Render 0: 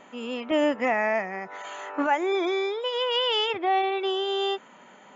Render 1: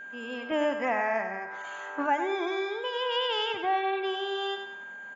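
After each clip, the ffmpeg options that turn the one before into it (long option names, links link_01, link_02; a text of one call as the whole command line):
ffmpeg -i in.wav -af "aecho=1:1:96|192|288|384:0.398|0.151|0.0575|0.0218,adynamicequalizer=threshold=0.01:dfrequency=1000:dqfactor=1.7:tfrequency=1000:tqfactor=1.7:attack=5:release=100:ratio=0.375:range=2.5:mode=boostabove:tftype=bell,aeval=exprs='val(0)+0.02*sin(2*PI*1600*n/s)':channel_layout=same,volume=-6dB" out.wav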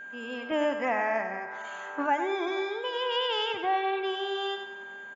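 ffmpeg -i in.wav -filter_complex "[0:a]asplit=2[link_01][link_02];[link_02]adelay=484,volume=-20dB,highshelf=frequency=4000:gain=-10.9[link_03];[link_01][link_03]amix=inputs=2:normalize=0" out.wav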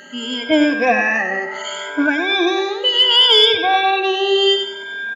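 ffmpeg -i in.wav -af "afftfilt=real='re*pow(10,22/40*sin(2*PI*(1.7*log(max(b,1)*sr/1024/100)/log(2)-(0.69)*(pts-256)/sr)))':imag='im*pow(10,22/40*sin(2*PI*(1.7*log(max(b,1)*sr/1024/100)/log(2)-(0.69)*(pts-256)/sr)))':win_size=1024:overlap=0.75,equalizer=frequency=125:width_type=o:width=1:gain=-6,equalizer=frequency=1000:width_type=o:width=1:gain=-9,equalizer=frequency=4000:width_type=o:width=1:gain=8,acontrast=62,volume=4.5dB" out.wav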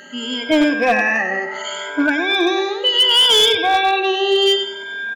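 ffmpeg -i in.wav -af "volume=8.5dB,asoftclip=hard,volume=-8.5dB" out.wav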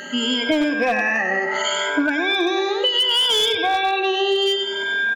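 ffmpeg -i in.wav -af "acompressor=threshold=-24dB:ratio=6,volume=6.5dB" out.wav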